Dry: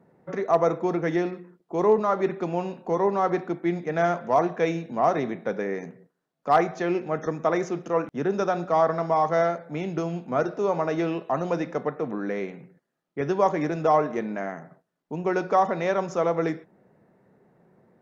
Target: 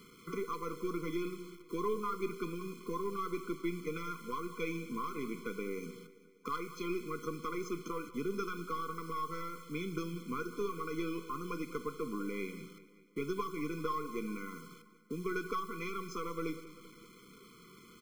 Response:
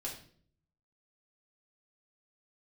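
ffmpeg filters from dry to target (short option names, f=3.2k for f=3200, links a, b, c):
-filter_complex "[0:a]aeval=exprs='0.335*(cos(1*acos(clip(val(0)/0.335,-1,1)))-cos(1*PI/2))+0.00841*(cos(6*acos(clip(val(0)/0.335,-1,1)))-cos(6*PI/2))':c=same,aecho=1:1:1.2:0.46,asplit=2[a][b];[1:a]atrim=start_sample=2205[c];[b][c]afir=irnorm=-1:irlink=0,volume=-20.5dB[d];[a][d]amix=inputs=2:normalize=0,acompressor=threshold=-42dB:ratio=2.5,acrusher=bits=9:mix=0:aa=0.000001,equalizer=f=110:w=0.66:g=-14.5,aecho=1:1:194|388|582|776|970:0.141|0.0791|0.0443|0.0248|0.0139,afftfilt=real='re*eq(mod(floor(b*sr/1024/500),2),0)':imag='im*eq(mod(floor(b*sr/1024/500),2),0)':win_size=1024:overlap=0.75,volume=8dB"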